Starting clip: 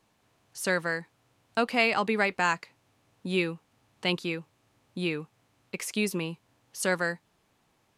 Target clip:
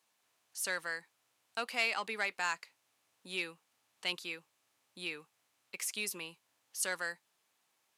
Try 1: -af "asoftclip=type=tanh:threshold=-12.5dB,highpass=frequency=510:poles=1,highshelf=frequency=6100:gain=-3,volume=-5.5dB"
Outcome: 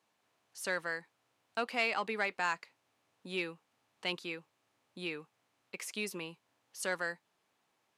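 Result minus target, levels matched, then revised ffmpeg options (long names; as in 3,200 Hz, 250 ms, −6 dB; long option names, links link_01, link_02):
8,000 Hz band −6.5 dB; 500 Hz band +5.0 dB
-af "asoftclip=type=tanh:threshold=-12.5dB,highpass=frequency=1200:poles=1,highshelf=frequency=6100:gain=7,volume=-5.5dB"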